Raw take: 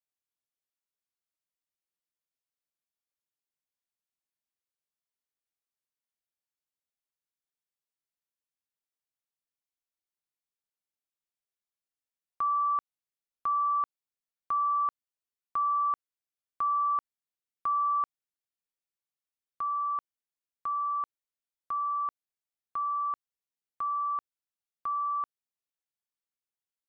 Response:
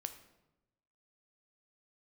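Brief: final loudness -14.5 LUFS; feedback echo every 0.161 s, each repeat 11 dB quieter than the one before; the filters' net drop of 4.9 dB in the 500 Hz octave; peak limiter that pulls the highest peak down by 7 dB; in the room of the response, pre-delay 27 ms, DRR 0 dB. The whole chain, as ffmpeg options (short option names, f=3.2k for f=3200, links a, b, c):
-filter_complex "[0:a]equalizer=f=500:t=o:g=-6.5,alimiter=level_in=7.5dB:limit=-24dB:level=0:latency=1,volume=-7.5dB,aecho=1:1:161|322|483:0.282|0.0789|0.0221,asplit=2[a][b];[1:a]atrim=start_sample=2205,adelay=27[c];[b][c]afir=irnorm=-1:irlink=0,volume=2.5dB[d];[a][d]amix=inputs=2:normalize=0,volume=22dB"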